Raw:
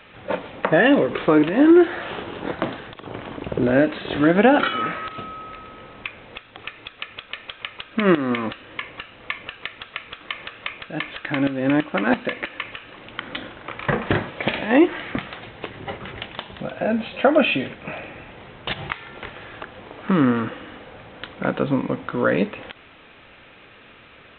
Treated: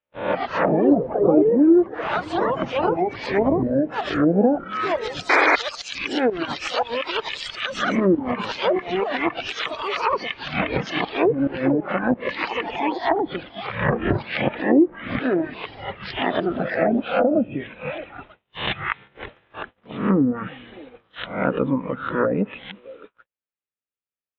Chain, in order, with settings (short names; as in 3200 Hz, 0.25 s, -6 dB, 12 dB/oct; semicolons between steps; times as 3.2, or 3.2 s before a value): spectral swells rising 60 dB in 0.60 s; delay with a stepping band-pass 0.312 s, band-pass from 160 Hz, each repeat 1.4 oct, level -10.5 dB; gate -34 dBFS, range -46 dB; echoes that change speed 0.194 s, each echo +5 st, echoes 3; treble ducked by the level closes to 500 Hz, closed at -11.5 dBFS; 11.71–12.29 high shelf 3600 Hz -7.5 dB; reverb removal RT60 2 s; 5.29–5.56 painted sound noise 270–2500 Hz -16 dBFS; 16.16–17.49 three-band squash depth 40%